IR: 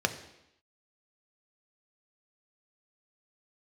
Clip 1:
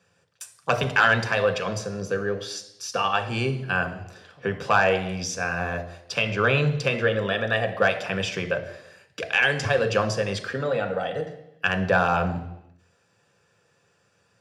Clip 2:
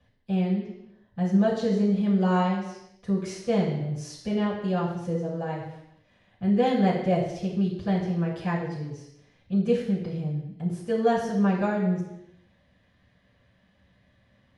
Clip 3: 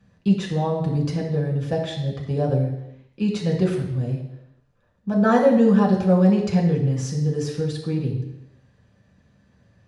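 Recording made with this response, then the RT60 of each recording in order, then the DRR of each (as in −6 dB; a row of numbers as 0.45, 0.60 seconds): 1; 0.85, 0.85, 0.85 seconds; 6.5, −9.0, −3.0 decibels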